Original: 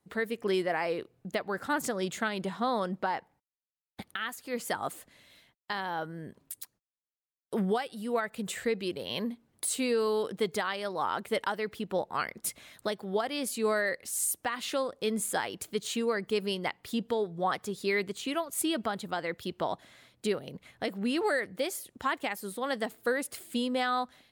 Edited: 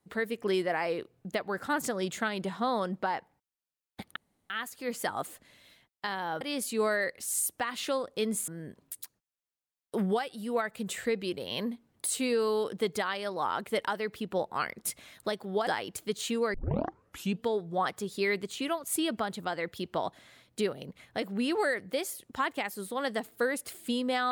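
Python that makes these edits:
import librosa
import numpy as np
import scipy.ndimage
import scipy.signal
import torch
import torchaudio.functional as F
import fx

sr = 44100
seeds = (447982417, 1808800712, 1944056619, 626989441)

y = fx.edit(x, sr, fx.insert_room_tone(at_s=4.16, length_s=0.34),
    fx.move(start_s=13.26, length_s=2.07, to_s=6.07),
    fx.tape_start(start_s=16.2, length_s=0.88), tone=tone)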